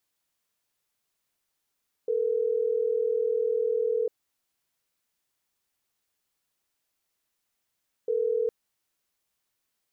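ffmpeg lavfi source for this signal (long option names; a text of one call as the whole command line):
ffmpeg -f lavfi -i "aevalsrc='0.0501*(sin(2*PI*440*t)+sin(2*PI*480*t))*clip(min(mod(t,6),2-mod(t,6))/0.005,0,1)':duration=6.41:sample_rate=44100" out.wav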